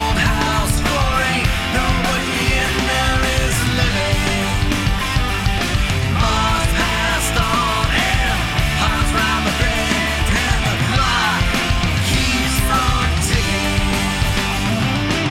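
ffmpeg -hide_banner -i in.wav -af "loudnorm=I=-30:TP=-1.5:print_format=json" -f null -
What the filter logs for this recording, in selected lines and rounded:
"input_i" : "-17.0",
"input_tp" : "-5.1",
"input_lra" : "0.8",
"input_thresh" : "-27.0",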